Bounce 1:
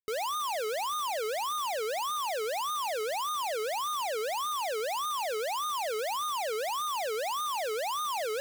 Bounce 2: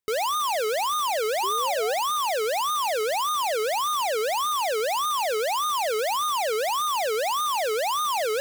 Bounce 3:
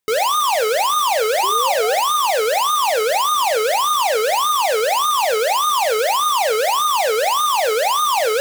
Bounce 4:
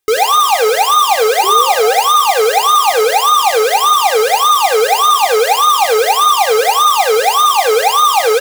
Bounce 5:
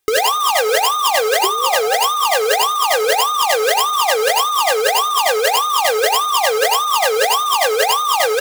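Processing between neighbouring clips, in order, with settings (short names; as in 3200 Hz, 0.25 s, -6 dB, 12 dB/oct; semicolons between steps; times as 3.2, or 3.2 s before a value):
painted sound rise, 1.43–1.94, 370–810 Hz -41 dBFS; gain +7 dB
low shelf 170 Hz -5 dB; two-slope reverb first 0.3 s, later 2.1 s, from -28 dB, DRR 8 dB; gain +7.5 dB
comb 2.5 ms, depth 78%; tape echo 84 ms, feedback 53%, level -13 dB, low-pass 4700 Hz; gain +3.5 dB
negative-ratio compressor -15 dBFS, ratio -1; gain -1 dB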